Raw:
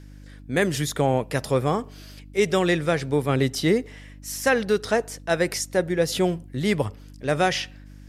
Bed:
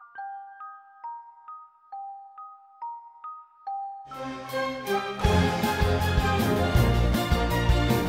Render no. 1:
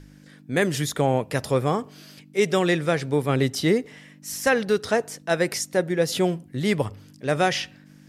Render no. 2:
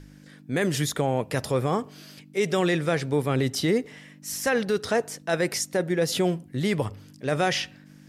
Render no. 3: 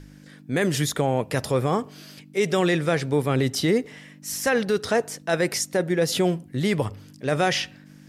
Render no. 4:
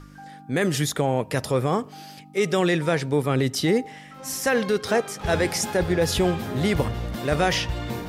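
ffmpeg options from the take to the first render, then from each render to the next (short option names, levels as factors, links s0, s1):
-af "bandreject=f=50:t=h:w=4,bandreject=f=100:t=h:w=4"
-af "alimiter=limit=0.188:level=0:latency=1:release=13"
-af "volume=1.26"
-filter_complex "[1:a]volume=0.447[s0];[0:a][s0]amix=inputs=2:normalize=0"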